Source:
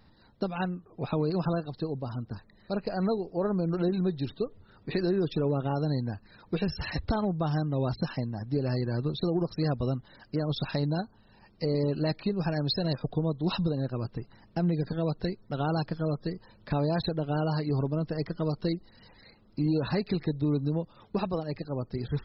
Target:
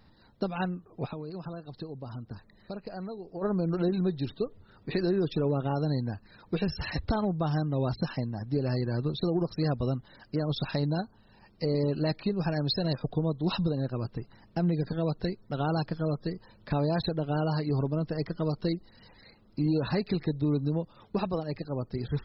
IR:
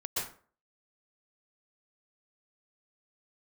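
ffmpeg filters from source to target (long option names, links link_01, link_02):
-filter_complex "[0:a]asplit=3[link_01][link_02][link_03];[link_01]afade=type=out:start_time=1.06:duration=0.02[link_04];[link_02]acompressor=threshold=-36dB:ratio=6,afade=type=in:start_time=1.06:duration=0.02,afade=type=out:start_time=3.41:duration=0.02[link_05];[link_03]afade=type=in:start_time=3.41:duration=0.02[link_06];[link_04][link_05][link_06]amix=inputs=3:normalize=0"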